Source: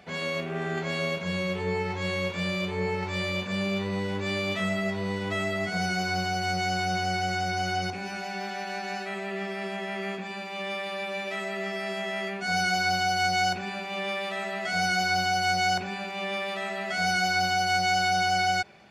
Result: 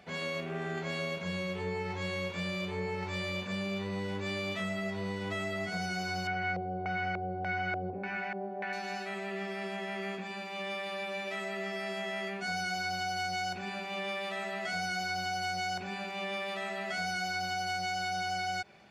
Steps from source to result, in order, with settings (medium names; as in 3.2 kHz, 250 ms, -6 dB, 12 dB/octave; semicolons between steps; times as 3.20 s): compression, threshold -27 dBFS, peak gain reduction 6.5 dB; 6.27–8.73 s: LFO low-pass square 1.7 Hz 520–2000 Hz; trim -4 dB